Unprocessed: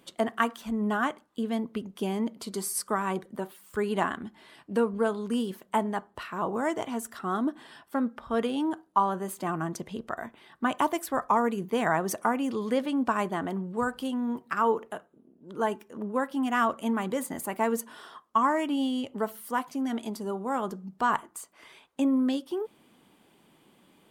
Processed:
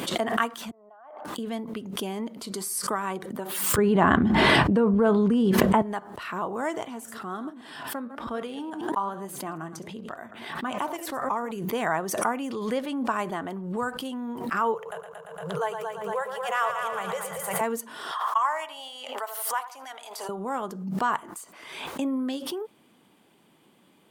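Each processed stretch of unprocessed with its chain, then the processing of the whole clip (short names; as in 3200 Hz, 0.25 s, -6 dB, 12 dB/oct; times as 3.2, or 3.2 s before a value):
0.71–1.25 compressor 16:1, threshold -38 dBFS + ladder band-pass 760 Hz, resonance 65%
3.78–5.82 RIAA curve playback + fast leveller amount 100%
6.85–11.51 reverse delay 0.109 s, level -13 dB + flange 1.3 Hz, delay 3.7 ms, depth 6 ms, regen +86%
14.74–17.61 Chebyshev band-stop 170–440 Hz, order 3 + multi-head echo 0.115 s, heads first and second, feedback 49%, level -8 dB
18.11–20.29 HPF 680 Hz 24 dB/oct + de-esser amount 60% + darkening echo 82 ms, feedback 49%, low-pass 1100 Hz, level -11 dB
whole clip: dynamic EQ 220 Hz, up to -4 dB, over -36 dBFS, Q 0.79; HPF 84 Hz; backwards sustainer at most 50 dB/s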